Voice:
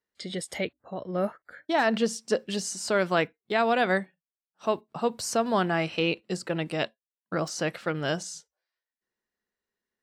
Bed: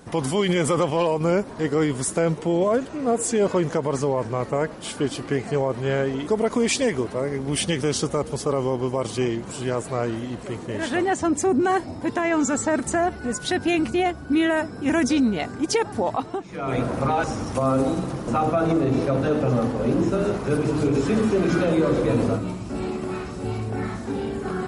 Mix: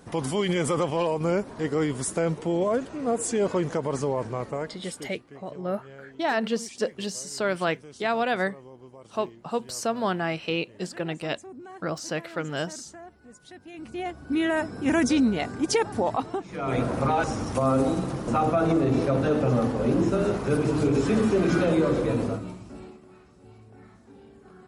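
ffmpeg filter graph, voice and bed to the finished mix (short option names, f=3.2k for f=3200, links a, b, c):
-filter_complex "[0:a]adelay=4500,volume=-1.5dB[a];[1:a]volume=17.5dB,afade=t=out:st=4.21:d=0.95:silence=0.112202,afade=t=in:st=13.73:d=1.01:silence=0.0841395,afade=t=out:st=21.72:d=1.29:silence=0.0891251[b];[a][b]amix=inputs=2:normalize=0"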